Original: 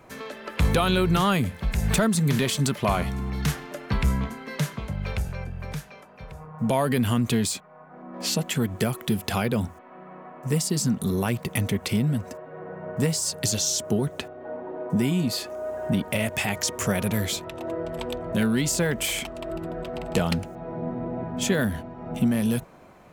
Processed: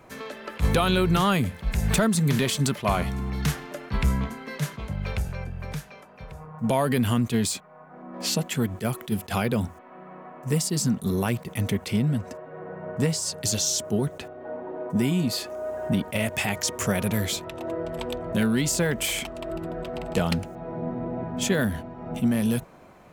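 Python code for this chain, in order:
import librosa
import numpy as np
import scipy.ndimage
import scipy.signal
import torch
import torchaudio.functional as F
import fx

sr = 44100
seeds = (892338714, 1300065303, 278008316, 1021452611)

y = fx.high_shelf(x, sr, hz=11000.0, db=-9.0, at=(11.89, 13.41))
y = fx.attack_slew(y, sr, db_per_s=350.0)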